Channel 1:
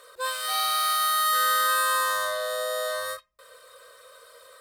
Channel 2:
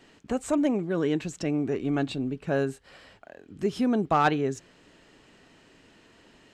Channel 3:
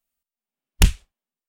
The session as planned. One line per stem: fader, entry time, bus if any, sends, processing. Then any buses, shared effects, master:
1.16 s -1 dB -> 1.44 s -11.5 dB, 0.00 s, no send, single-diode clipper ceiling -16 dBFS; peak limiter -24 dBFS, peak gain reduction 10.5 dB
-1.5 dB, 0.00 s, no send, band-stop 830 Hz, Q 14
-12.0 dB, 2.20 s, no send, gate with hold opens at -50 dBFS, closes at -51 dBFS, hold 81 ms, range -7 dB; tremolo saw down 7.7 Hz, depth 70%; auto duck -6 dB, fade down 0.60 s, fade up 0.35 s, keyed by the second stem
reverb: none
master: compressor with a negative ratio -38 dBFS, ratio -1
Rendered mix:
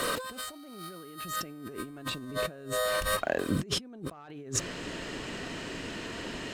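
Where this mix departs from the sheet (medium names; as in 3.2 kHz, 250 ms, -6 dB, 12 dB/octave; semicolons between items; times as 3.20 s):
stem 1 -1.0 dB -> +7.5 dB; stem 2 -1.5 dB -> +6.0 dB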